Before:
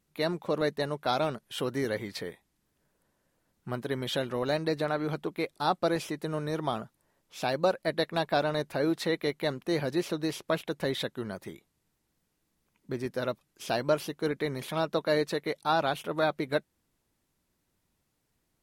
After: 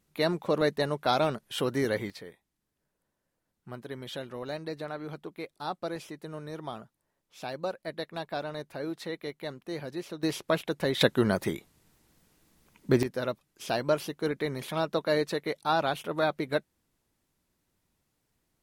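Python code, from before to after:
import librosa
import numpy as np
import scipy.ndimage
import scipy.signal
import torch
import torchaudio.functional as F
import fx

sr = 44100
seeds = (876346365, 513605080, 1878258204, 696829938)

y = fx.gain(x, sr, db=fx.steps((0.0, 2.5), (2.1, -7.5), (10.23, 2.0), (11.01, 11.5), (13.03, 0.0)))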